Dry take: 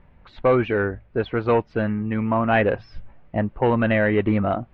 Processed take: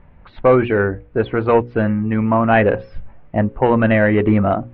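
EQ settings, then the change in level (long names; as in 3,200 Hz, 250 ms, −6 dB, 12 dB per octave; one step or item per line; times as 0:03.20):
high-frequency loss of the air 260 metres
mains-hum notches 60/120/180/240/300/360/420/480/540 Hz
+6.5 dB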